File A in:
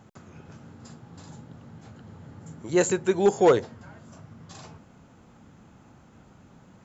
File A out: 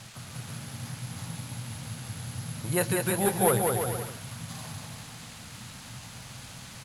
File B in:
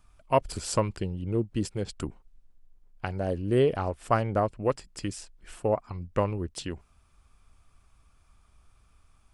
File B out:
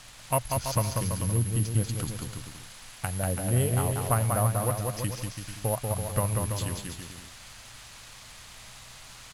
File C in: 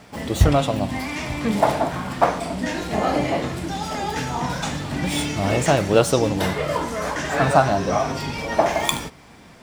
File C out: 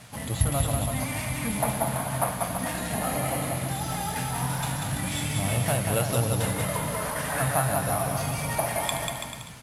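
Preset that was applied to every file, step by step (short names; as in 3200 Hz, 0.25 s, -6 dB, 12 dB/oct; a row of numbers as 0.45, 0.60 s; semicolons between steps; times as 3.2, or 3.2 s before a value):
in parallel at -6.5 dB: requantised 6-bit, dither triangular; on the sum: bell 370 Hz -9.5 dB 0.78 oct; careless resampling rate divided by 4×, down filtered, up zero stuff; LPF 7100 Hz 12 dB/oct; bell 120 Hz +10.5 dB 0.34 oct; compressor 1.5:1, threshold -25 dBFS; on a send: bouncing-ball echo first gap 0.19 s, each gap 0.75×, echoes 5; on the sum: normalise peaks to -9 dBFS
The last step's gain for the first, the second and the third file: -1.5, -2.5, -7.0 dB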